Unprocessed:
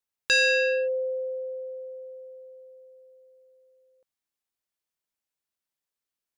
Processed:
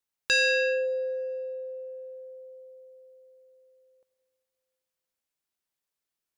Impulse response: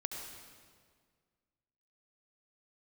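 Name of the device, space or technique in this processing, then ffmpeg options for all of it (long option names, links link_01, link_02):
ducked reverb: -filter_complex "[0:a]asplit=3[link_01][link_02][link_03];[1:a]atrim=start_sample=2205[link_04];[link_02][link_04]afir=irnorm=-1:irlink=0[link_05];[link_03]apad=whole_len=281339[link_06];[link_05][link_06]sidechaincompress=threshold=-42dB:ratio=3:attack=16:release=390,volume=-5dB[link_07];[link_01][link_07]amix=inputs=2:normalize=0,volume=-2.5dB"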